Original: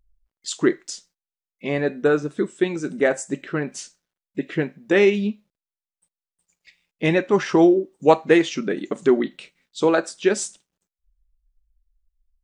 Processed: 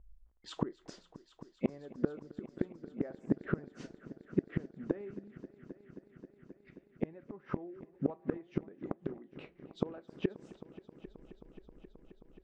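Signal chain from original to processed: LPF 1100 Hz 12 dB/oct; bell 64 Hz +11.5 dB 0.34 oct; vocal rider within 5 dB 2 s; flipped gate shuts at -19 dBFS, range -32 dB; on a send: multi-head echo 0.266 s, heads all three, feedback 71%, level -21.5 dB; on the sum: gain +2.5 dB

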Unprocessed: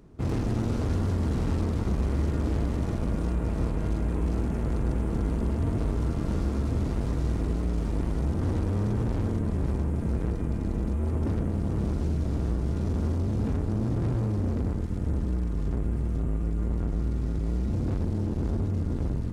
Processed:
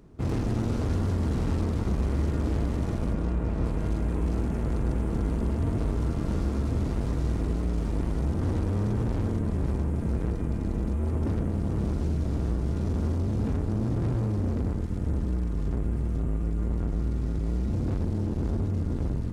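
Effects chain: 3.13–3.65 LPF 3700 Hz 6 dB/oct

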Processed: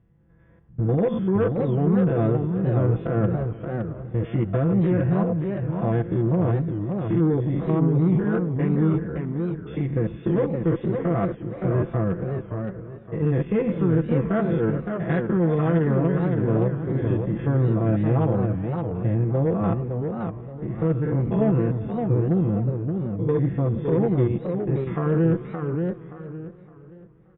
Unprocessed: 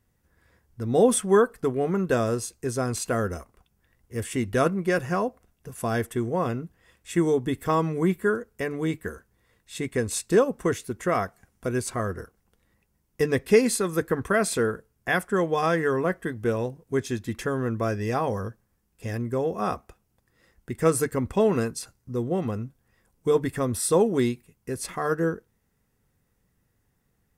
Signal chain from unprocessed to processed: stepped spectrum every 0.1 s; HPF 88 Hz 12 dB/oct; tilt -4.5 dB/oct; comb 6 ms, depth 79%; in parallel at -2.5 dB: compressor, threshold -27 dBFS, peak gain reduction 19 dB; on the sum: limiter -9 dBFS, peak gain reduction 8.5 dB; added harmonics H 4 -25 dB, 5 -30 dB, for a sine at -9 dBFS; brick-wall FIR low-pass 3600 Hz; feedback echo 0.372 s, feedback 56%, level -20.5 dB; warbling echo 0.57 s, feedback 30%, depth 194 cents, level -5.5 dB; gain -5 dB

